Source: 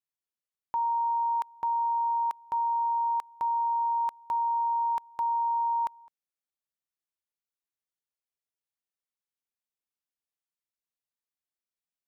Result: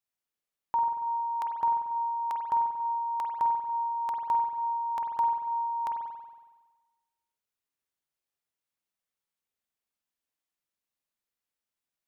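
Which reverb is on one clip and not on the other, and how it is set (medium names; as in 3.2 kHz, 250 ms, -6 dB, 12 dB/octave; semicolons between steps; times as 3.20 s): spring tank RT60 1.3 s, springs 46 ms, chirp 45 ms, DRR 2 dB; trim +2 dB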